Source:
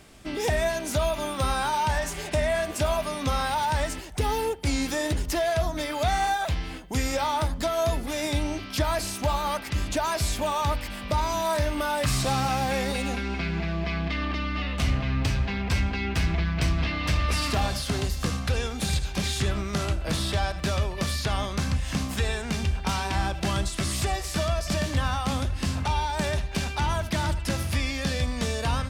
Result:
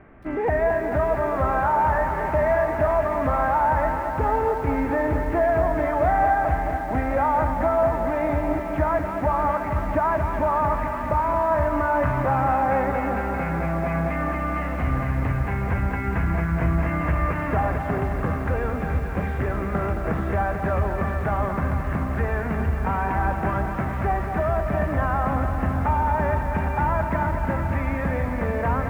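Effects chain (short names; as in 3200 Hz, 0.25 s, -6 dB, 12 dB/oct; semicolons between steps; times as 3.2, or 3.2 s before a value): dynamic EQ 780 Hz, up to +4 dB, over -37 dBFS, Q 0.92; in parallel at +1 dB: limiter -21.5 dBFS, peak gain reduction 8.5 dB; on the sum: steep low-pass 2000 Hz 36 dB/oct; notches 50/100/150/200 Hz; on a send: thinning echo 88 ms, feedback 77%, high-pass 510 Hz, level -22.5 dB; on the sum: lo-fi delay 0.22 s, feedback 80%, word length 8-bit, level -8 dB; gain -2.5 dB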